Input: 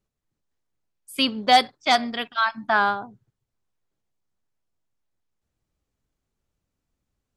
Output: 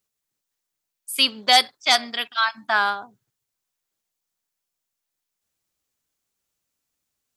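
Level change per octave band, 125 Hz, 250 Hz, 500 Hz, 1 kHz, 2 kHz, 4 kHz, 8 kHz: no reading, -8.0 dB, -3.5 dB, -2.0 dB, +2.0 dB, +5.5 dB, +9.0 dB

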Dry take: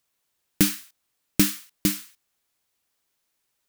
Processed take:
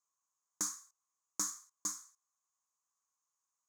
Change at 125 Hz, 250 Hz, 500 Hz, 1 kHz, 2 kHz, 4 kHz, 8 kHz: under -30 dB, -29.0 dB, -24.5 dB, -7.0 dB, -22.0 dB, -18.0 dB, -7.0 dB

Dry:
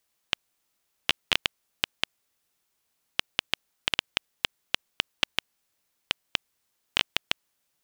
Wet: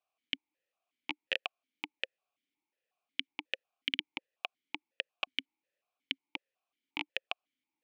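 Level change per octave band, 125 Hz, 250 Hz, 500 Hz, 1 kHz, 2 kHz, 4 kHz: -18.0 dB, -3.5 dB, -5.5 dB, -8.5 dB, -7.5 dB, -10.0 dB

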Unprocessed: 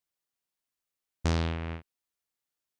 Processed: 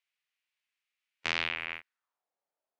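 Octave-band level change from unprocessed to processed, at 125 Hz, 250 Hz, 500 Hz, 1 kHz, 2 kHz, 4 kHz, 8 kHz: -28.5 dB, -16.0 dB, -9.0 dB, -1.5 dB, +9.0 dB, +6.0 dB, -4.5 dB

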